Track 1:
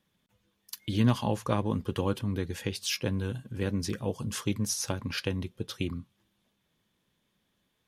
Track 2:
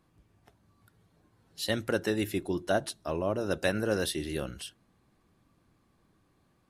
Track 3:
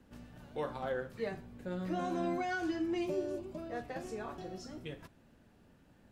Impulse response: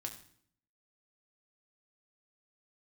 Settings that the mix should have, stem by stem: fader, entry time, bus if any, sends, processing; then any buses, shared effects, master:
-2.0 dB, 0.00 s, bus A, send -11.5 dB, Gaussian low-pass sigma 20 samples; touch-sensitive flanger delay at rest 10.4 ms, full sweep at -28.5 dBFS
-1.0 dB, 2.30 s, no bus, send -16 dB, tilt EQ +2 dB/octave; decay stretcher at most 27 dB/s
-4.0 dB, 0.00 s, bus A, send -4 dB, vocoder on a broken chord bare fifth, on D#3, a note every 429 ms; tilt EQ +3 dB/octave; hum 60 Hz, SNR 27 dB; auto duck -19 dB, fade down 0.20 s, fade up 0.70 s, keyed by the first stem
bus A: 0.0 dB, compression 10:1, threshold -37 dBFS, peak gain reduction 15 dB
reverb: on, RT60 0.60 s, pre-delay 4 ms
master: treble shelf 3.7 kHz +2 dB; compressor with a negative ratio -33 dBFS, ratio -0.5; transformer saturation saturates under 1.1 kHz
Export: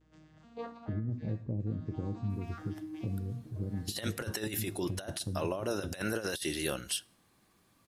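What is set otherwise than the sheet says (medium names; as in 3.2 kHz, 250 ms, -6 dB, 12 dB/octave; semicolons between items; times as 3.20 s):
stem 2: missing decay stretcher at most 27 dB/s; master: missing transformer saturation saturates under 1.1 kHz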